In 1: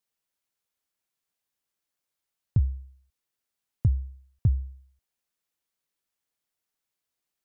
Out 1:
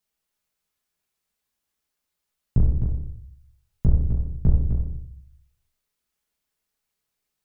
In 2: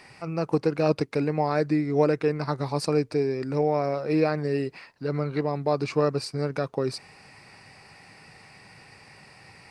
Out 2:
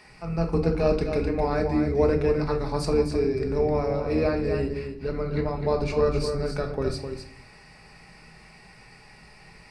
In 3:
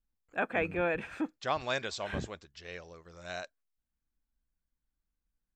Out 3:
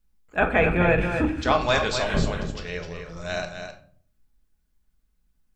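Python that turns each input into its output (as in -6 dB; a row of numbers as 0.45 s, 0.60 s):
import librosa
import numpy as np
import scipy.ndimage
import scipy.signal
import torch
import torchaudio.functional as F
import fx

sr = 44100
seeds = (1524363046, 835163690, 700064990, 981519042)

y = fx.octave_divider(x, sr, octaves=2, level_db=-1.0)
y = y + 10.0 ** (-7.5 / 20.0) * np.pad(y, (int(257 * sr / 1000.0), 0))[:len(y)]
y = fx.room_shoebox(y, sr, seeds[0], volume_m3=530.0, walls='furnished', distance_m=1.4)
y = y * 10.0 ** (-26 / 20.0) / np.sqrt(np.mean(np.square(y)))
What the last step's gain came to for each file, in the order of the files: +2.0 dB, -3.0 dB, +9.0 dB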